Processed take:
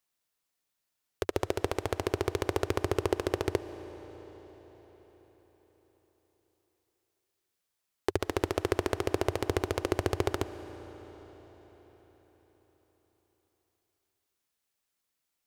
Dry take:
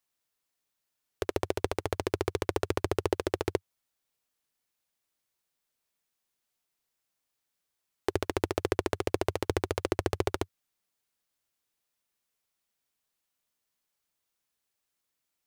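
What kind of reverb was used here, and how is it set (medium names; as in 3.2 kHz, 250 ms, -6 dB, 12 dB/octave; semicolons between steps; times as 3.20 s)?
algorithmic reverb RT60 5 s, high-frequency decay 0.9×, pre-delay 95 ms, DRR 14.5 dB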